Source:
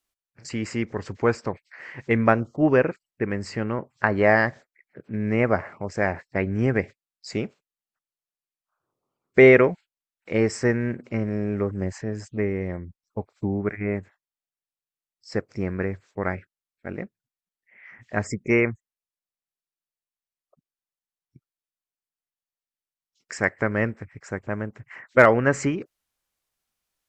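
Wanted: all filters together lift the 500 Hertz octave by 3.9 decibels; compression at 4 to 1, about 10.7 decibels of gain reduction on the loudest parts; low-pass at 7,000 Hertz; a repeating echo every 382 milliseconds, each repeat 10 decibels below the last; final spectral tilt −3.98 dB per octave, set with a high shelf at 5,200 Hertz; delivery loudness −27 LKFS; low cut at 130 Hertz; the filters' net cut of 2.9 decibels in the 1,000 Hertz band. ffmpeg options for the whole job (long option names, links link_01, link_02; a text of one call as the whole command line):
ffmpeg -i in.wav -af "highpass=130,lowpass=7000,equalizer=frequency=500:width_type=o:gain=6.5,equalizer=frequency=1000:width_type=o:gain=-7.5,highshelf=frequency=5200:gain=7,acompressor=threshold=-19dB:ratio=4,aecho=1:1:382|764|1146|1528:0.316|0.101|0.0324|0.0104,volume=0.5dB" out.wav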